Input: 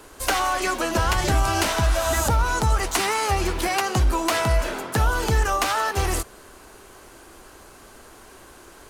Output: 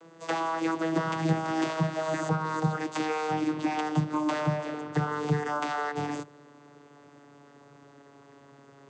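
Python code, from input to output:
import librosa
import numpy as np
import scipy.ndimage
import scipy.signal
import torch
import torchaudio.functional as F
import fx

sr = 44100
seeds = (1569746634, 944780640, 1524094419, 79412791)

y = fx.vocoder_glide(x, sr, note=52, semitones=-3)
y = y * 10.0 ** (-4.0 / 20.0)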